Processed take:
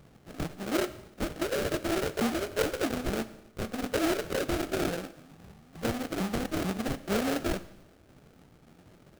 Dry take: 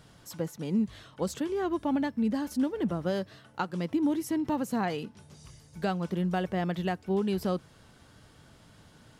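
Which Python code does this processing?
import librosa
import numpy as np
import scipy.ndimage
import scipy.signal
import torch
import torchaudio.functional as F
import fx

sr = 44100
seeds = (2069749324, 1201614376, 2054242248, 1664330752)

y = fx.pitch_ramps(x, sr, semitones=11.0, every_ms=443)
y = fx.sample_hold(y, sr, seeds[0], rate_hz=1000.0, jitter_pct=20)
y = fx.rev_schroeder(y, sr, rt60_s=0.84, comb_ms=28, drr_db=14.0)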